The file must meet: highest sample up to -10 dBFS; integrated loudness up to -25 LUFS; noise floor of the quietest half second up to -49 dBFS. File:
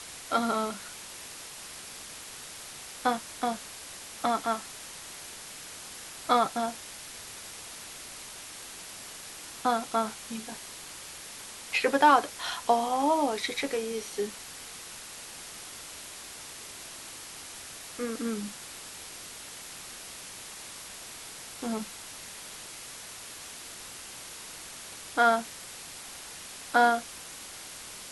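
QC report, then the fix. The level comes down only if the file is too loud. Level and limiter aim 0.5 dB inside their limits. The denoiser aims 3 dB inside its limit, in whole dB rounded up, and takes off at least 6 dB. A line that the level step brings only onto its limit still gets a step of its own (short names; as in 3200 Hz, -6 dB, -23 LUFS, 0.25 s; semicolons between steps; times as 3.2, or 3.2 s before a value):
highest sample -7.5 dBFS: fail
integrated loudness -32.5 LUFS: OK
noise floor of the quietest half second -44 dBFS: fail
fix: denoiser 8 dB, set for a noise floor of -44 dBFS; limiter -10.5 dBFS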